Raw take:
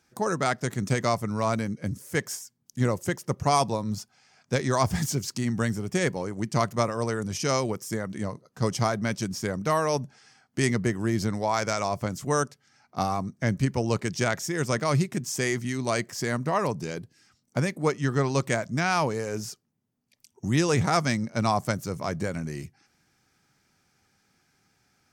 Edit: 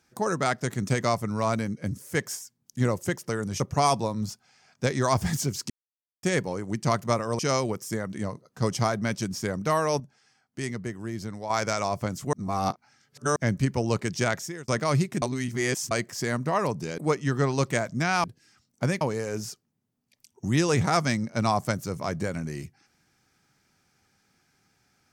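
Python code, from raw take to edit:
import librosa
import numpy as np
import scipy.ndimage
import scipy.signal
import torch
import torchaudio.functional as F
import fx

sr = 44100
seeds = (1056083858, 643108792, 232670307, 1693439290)

y = fx.edit(x, sr, fx.silence(start_s=5.39, length_s=0.53),
    fx.move(start_s=7.08, length_s=0.31, to_s=3.29),
    fx.clip_gain(start_s=10.0, length_s=1.5, db=-8.0),
    fx.reverse_span(start_s=12.33, length_s=1.03),
    fx.fade_out_span(start_s=14.34, length_s=0.34),
    fx.reverse_span(start_s=15.22, length_s=0.69),
    fx.move(start_s=16.98, length_s=0.77, to_s=19.01), tone=tone)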